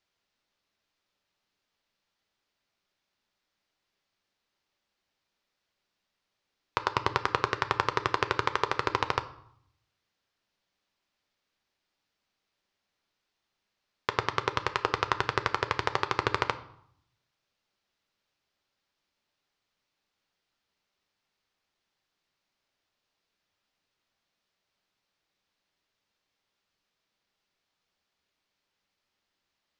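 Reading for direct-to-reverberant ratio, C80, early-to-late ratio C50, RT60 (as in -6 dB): 9.0 dB, 18.5 dB, 15.5 dB, 0.70 s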